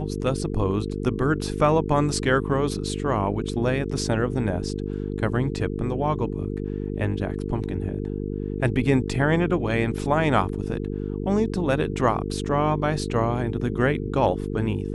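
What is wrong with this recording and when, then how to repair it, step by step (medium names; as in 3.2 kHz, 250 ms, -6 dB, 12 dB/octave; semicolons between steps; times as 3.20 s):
buzz 50 Hz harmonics 9 -29 dBFS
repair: de-hum 50 Hz, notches 9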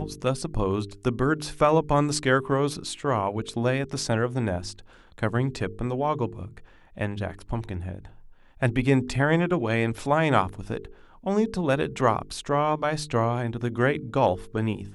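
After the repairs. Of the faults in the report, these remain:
nothing left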